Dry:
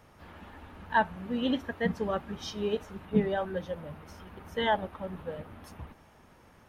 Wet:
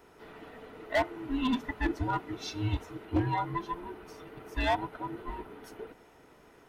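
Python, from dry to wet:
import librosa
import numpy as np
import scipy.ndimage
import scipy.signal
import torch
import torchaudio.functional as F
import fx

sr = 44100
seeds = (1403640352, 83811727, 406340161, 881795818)

y = fx.band_invert(x, sr, width_hz=500)
y = np.clip(y, -10.0 ** (-21.5 / 20.0), 10.0 ** (-21.5 / 20.0))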